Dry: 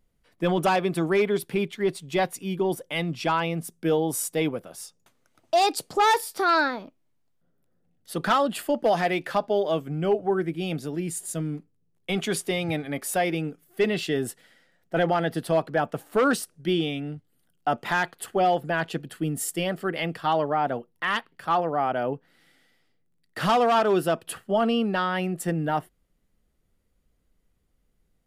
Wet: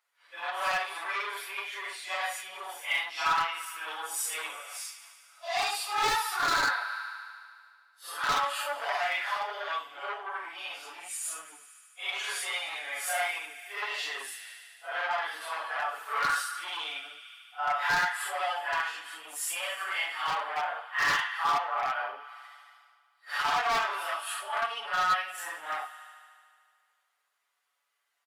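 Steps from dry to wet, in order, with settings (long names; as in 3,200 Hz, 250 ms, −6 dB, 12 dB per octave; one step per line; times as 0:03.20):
random phases in long frames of 200 ms
spectral tilt −2.5 dB per octave
on a send: delay with a high-pass on its return 74 ms, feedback 78%, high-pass 1,400 Hz, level −14 dB
on the sum: soft clipping −17.5 dBFS, distortion −13 dB
in parallel at +2.5 dB: downward compressor 10 to 1, threshold −33 dBFS, peak gain reduction 13.5 dB
on the sum: high-pass filter 1,000 Hz 24 dB per octave
wave folding −22.5 dBFS
comb filter 7 ms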